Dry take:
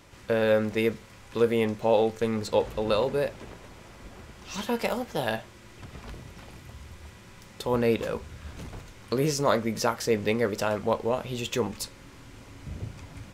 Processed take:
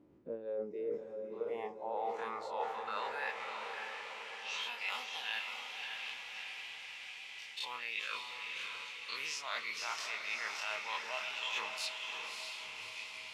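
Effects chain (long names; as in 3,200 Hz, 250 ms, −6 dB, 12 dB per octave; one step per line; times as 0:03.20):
every bin's largest magnitude spread in time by 60 ms
band-pass filter sweep 290 Hz → 2,600 Hz, 0:00.11–0:03.76
on a send at −20.5 dB: convolution reverb RT60 3.3 s, pre-delay 4 ms
on the sum: noise reduction from a noise print of the clip's start 12 dB
parametric band 1,700 Hz −2.5 dB
reversed playback
downward compressor 8 to 1, threshold −43 dBFS, peak gain reduction 21.5 dB
reversed playback
feedback delay with all-pass diffusion 598 ms, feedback 55%, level −4.5 dB
level +6.5 dB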